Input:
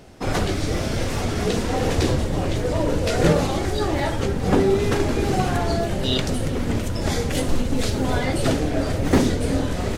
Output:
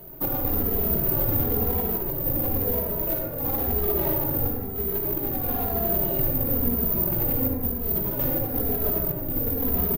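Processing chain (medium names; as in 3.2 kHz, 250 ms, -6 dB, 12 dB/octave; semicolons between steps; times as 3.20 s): median filter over 25 samples; hum notches 50/100/150/200 Hz; compressor with a negative ratio -25 dBFS, ratio -0.5; peak limiter -17 dBFS, peak gain reduction 6 dB; careless resampling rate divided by 3×, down filtered, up zero stuff; 5.33–7.56 s: band-stop 5.5 kHz, Q 8.7; reverberation RT60 1.8 s, pre-delay 43 ms, DRR 0.5 dB; endless flanger 2.7 ms -1 Hz; trim -2 dB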